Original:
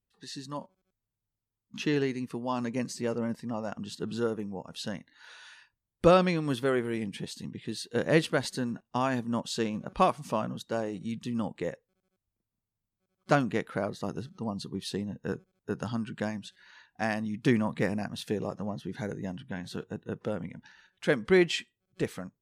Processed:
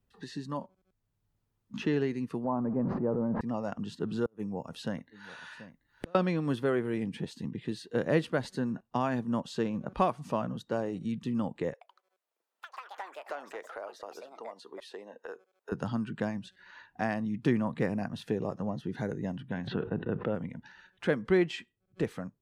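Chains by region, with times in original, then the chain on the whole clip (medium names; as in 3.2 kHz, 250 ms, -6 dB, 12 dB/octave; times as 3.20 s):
2.44–3.41 s: jump at every zero crossing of -41 dBFS + low-pass 1.1 kHz 24 dB/octave + decay stretcher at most 26 dB/s
4.25–6.15 s: inverted gate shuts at -20 dBFS, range -39 dB + treble shelf 10 kHz +8.5 dB + delay 733 ms -21.5 dB
11.73–15.72 s: high-pass 460 Hz 24 dB/octave + ever faster or slower copies 81 ms, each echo +5 st, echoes 3, each echo -6 dB + compression 2:1, threshold -49 dBFS
19.67–20.35 s: expander -54 dBFS + low-pass 3.1 kHz 24 dB/octave + level flattener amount 70%
whole clip: treble shelf 3 kHz -11 dB; band-stop 2.2 kHz, Q 28; three bands compressed up and down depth 40%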